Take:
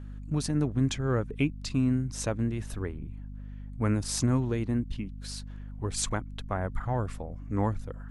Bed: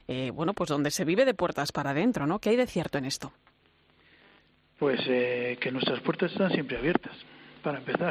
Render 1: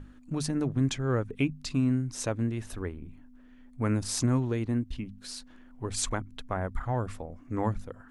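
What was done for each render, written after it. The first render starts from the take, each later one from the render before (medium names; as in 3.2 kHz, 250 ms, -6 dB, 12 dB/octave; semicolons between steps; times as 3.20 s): hum notches 50/100/150/200 Hz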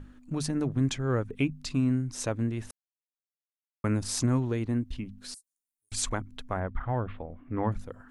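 2.71–3.84 s: mute; 5.34–5.92 s: inverse Chebyshev high-pass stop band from 2.8 kHz, stop band 60 dB; 6.60–7.72 s: steep low-pass 3.5 kHz 48 dB/octave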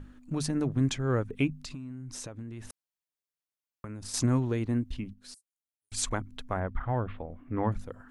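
1.54–4.14 s: compression 20:1, threshold -36 dBFS; 5.13–6.11 s: upward expansion, over -48 dBFS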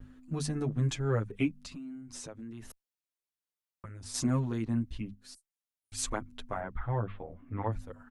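vibrato 1.2 Hz 39 cents; endless flanger 8.6 ms -0.52 Hz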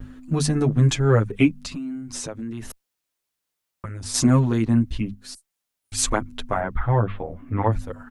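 trim +12 dB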